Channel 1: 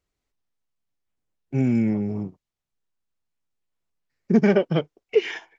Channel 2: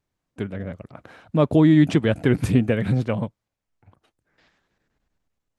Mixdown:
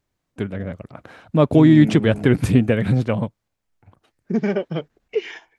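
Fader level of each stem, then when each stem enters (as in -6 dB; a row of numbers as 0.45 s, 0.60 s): -3.5 dB, +3.0 dB; 0.00 s, 0.00 s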